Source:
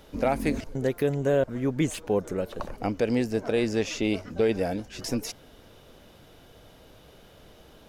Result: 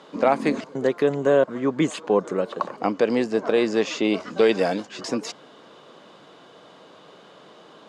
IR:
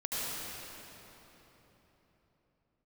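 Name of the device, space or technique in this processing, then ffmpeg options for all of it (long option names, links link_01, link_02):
television speaker: -filter_complex "[0:a]highpass=frequency=180:width=0.5412,highpass=frequency=180:width=1.3066,equalizer=frequency=240:width_type=q:width=4:gain=-4,equalizer=frequency=1100:width_type=q:width=4:gain=9,equalizer=frequency=2400:width_type=q:width=4:gain=-3,equalizer=frequency=5700:width_type=q:width=4:gain=-7,lowpass=frequency=7200:width=0.5412,lowpass=frequency=7200:width=1.3066,asettb=1/sr,asplit=3[link_01][link_02][link_03];[link_01]atrim=end=4.204[link_04];[link_02]atrim=start=4.2:end=4.87,asetpts=PTS-STARTPTS,afade=type=in:duration=0.004:curve=qsin,afade=type=out:start_time=0.666:duration=0.004:curve=qsin,highshelf=frequency=2200:gain=9[link_05];[link_03]atrim=start=4.866[link_06];[link_04][link_05]acrossfade=duration=0.004:curve1=hsin:curve2=qsin[link_07];[link_07][link_06]acrossfade=duration=0.004:curve1=qsin:curve2=hsin,volume=5.5dB"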